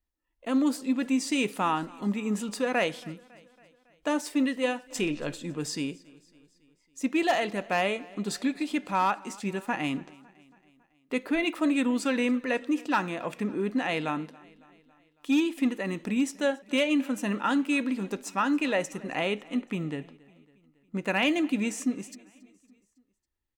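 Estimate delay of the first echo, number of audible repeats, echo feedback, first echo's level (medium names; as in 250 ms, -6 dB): 277 ms, 3, 58%, -23.5 dB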